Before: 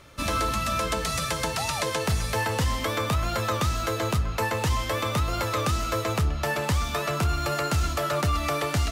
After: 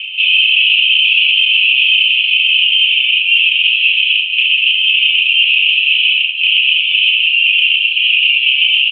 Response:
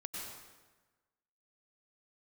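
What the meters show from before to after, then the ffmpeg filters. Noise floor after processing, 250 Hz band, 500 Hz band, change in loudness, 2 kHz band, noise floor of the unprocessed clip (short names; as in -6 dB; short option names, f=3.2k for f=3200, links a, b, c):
-16 dBFS, under -40 dB, under -40 dB, +18.0 dB, +22.5 dB, -31 dBFS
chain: -filter_complex "[0:a]acontrast=83,aecho=1:1:3.6:0.82,aphaser=in_gain=1:out_gain=1:delay=3.6:decay=0.35:speed=0.64:type=sinusoidal,acompressor=threshold=-16dB:ratio=10,asoftclip=type=tanh:threshold=-18.5dB,afreqshift=-14,afftfilt=real='re*lt(hypot(re,im),0.126)':imag='im*lt(hypot(re,im),0.126)':win_size=1024:overlap=0.75,asuperpass=centerf=2800:order=8:qfactor=4.2,asplit=2[a][b];[b]aecho=0:1:30|67.5|114.4|173|246.2:0.631|0.398|0.251|0.158|0.1[c];[a][c]amix=inputs=2:normalize=0,alimiter=level_in=32dB:limit=-1dB:release=50:level=0:latency=1,volume=-1dB"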